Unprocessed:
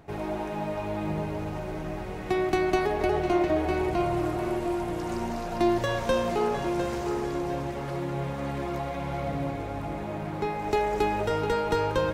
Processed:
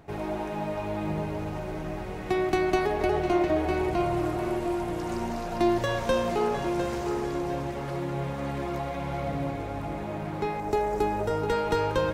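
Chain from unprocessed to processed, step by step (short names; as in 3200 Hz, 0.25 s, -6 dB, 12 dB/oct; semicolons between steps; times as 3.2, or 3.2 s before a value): 10.6–11.49 bell 2900 Hz -7.5 dB 1.7 oct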